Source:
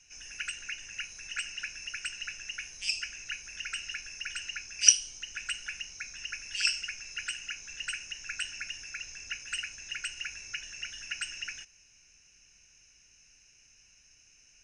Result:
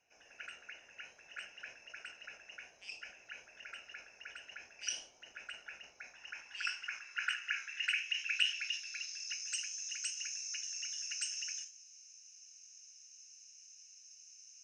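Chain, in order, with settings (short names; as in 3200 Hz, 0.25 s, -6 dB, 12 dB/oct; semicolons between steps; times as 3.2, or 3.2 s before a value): band-pass sweep 640 Hz -> 6100 Hz, 5.9–9.58; flange 0.58 Hz, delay 7.7 ms, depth 8.5 ms, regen +83%; sustainer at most 140 dB/s; gain +10 dB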